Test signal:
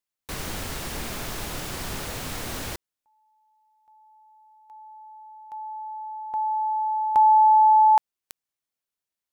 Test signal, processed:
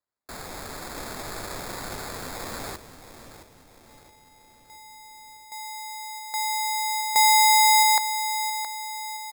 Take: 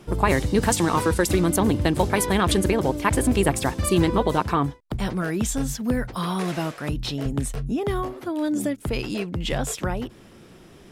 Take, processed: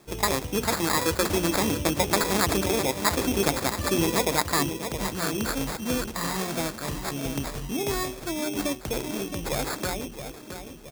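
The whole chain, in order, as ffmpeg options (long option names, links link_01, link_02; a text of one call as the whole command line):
ffmpeg -i in.wav -filter_complex "[0:a]bandreject=frequency=60:width_type=h:width=6,bandreject=frequency=120:width_type=h:width=6,bandreject=frequency=180:width_type=h:width=6,bandreject=frequency=240:width_type=h:width=6,bandreject=frequency=300:width_type=h:width=6,bandreject=frequency=360:width_type=h:width=6,bandreject=frequency=420:width_type=h:width=6,asplit=2[link_01][link_02];[link_02]adelay=669,lowpass=frequency=1800:poles=1,volume=-9dB,asplit=2[link_03][link_04];[link_04]adelay=669,lowpass=frequency=1800:poles=1,volume=0.5,asplit=2[link_05][link_06];[link_06]adelay=669,lowpass=frequency=1800:poles=1,volume=0.5,asplit=2[link_07][link_08];[link_08]adelay=669,lowpass=frequency=1800:poles=1,volume=0.5,asplit=2[link_09][link_10];[link_10]adelay=669,lowpass=frequency=1800:poles=1,volume=0.5,asplit=2[link_11][link_12];[link_12]adelay=669,lowpass=frequency=1800:poles=1,volume=0.5[link_13];[link_01][link_03][link_05][link_07][link_09][link_11][link_13]amix=inputs=7:normalize=0,acrusher=samples=15:mix=1:aa=0.000001,dynaudnorm=framelen=610:gausssize=3:maxgain=3dB,bass=frequency=250:gain=-5,treble=frequency=4000:gain=7,volume=-5dB" out.wav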